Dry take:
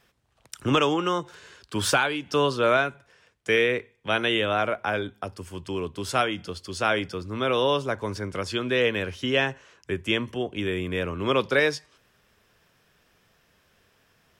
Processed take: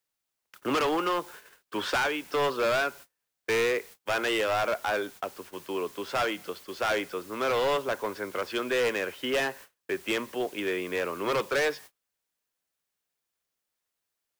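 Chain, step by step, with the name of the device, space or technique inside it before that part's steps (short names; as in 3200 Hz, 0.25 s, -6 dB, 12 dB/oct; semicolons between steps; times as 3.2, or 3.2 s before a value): aircraft radio (BPF 390–2600 Hz; hard clip -25 dBFS, distortion -8 dB; white noise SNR 21 dB; gate -47 dBFS, range -33 dB); gain +2 dB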